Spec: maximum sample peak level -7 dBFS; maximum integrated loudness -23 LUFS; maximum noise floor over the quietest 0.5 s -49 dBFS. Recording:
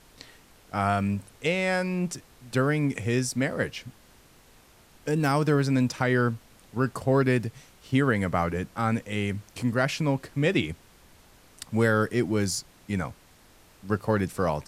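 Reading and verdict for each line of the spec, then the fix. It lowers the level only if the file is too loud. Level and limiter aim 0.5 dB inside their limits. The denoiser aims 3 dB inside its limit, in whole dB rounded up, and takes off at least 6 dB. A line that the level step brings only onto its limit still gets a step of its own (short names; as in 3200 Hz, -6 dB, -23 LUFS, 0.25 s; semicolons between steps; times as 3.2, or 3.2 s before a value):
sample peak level -10.0 dBFS: OK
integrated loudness -27.0 LUFS: OK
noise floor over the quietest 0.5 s -56 dBFS: OK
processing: none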